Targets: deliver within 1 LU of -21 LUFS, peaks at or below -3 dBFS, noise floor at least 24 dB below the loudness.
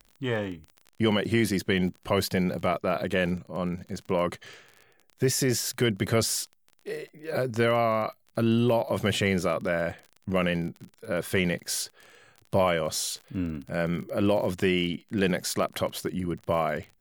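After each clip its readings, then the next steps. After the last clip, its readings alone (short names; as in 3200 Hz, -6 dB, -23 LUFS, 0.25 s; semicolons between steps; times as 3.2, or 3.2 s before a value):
ticks 32/s; loudness -27.5 LUFS; peak -11.0 dBFS; loudness target -21.0 LUFS
-> de-click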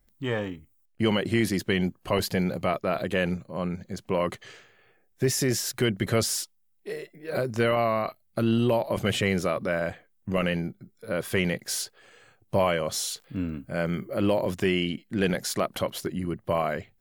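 ticks 0.94/s; loudness -27.5 LUFS; peak -11.0 dBFS; loudness target -21.0 LUFS
-> gain +6.5 dB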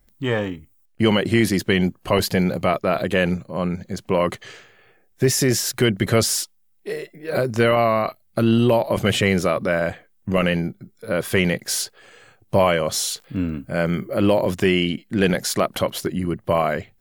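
loudness -21.0 LUFS; peak -4.5 dBFS; noise floor -60 dBFS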